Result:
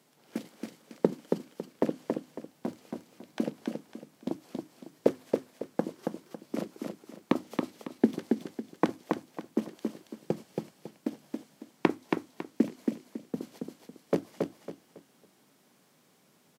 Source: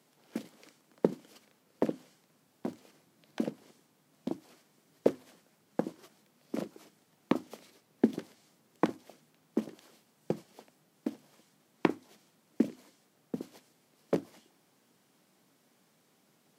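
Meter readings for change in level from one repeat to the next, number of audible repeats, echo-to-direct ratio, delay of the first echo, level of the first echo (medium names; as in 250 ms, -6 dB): -10.5 dB, 3, -3.5 dB, 276 ms, -4.0 dB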